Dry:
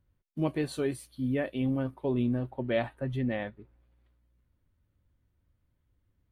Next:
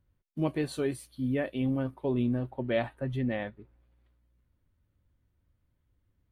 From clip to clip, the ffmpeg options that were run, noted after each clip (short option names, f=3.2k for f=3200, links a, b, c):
-af anull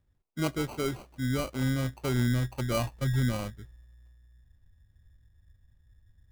-af "asubboost=boost=5.5:cutoff=140,acrusher=samples=25:mix=1:aa=0.000001"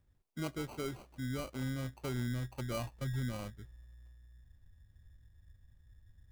-af "acompressor=threshold=-51dB:ratio=1.5"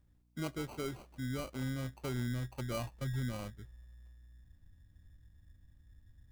-af "aeval=exprs='val(0)+0.000316*(sin(2*PI*60*n/s)+sin(2*PI*2*60*n/s)/2+sin(2*PI*3*60*n/s)/3+sin(2*PI*4*60*n/s)/4+sin(2*PI*5*60*n/s)/5)':c=same"